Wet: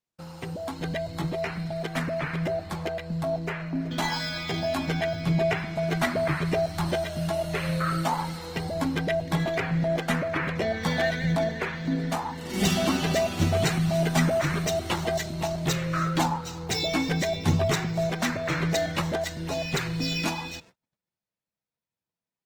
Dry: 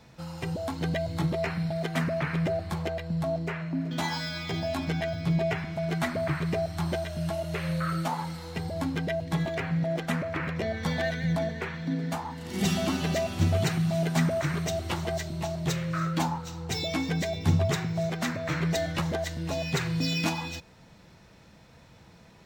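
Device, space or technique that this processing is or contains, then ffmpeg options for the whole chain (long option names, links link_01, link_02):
video call: -af "highpass=frequency=160:poles=1,dynaudnorm=framelen=340:gausssize=21:maxgain=4.5dB,agate=range=-39dB:threshold=-50dB:ratio=16:detection=peak" -ar 48000 -c:a libopus -b:a 20k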